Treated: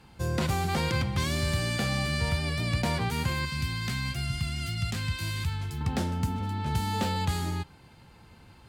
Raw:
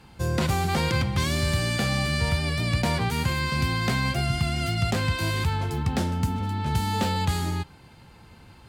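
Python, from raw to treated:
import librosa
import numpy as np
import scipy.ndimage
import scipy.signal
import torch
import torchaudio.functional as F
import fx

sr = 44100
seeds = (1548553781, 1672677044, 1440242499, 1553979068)

y = fx.peak_eq(x, sr, hz=550.0, db=-14.5, octaves=2.0, at=(3.45, 5.81))
y = F.gain(torch.from_numpy(y), -3.5).numpy()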